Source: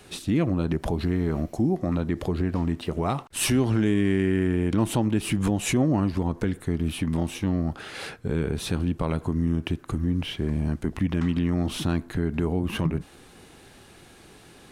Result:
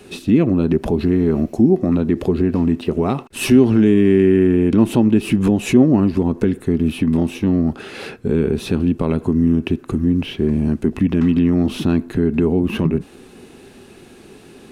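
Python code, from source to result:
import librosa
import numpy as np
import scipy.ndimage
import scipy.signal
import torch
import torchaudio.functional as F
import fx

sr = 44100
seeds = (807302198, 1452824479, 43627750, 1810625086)

y = fx.small_body(x, sr, hz=(240.0, 380.0, 2600.0), ring_ms=30, db=10)
y = fx.dynamic_eq(y, sr, hz=8400.0, q=1.2, threshold_db=-49.0, ratio=4.0, max_db=-5)
y = y * 10.0 ** (2.5 / 20.0)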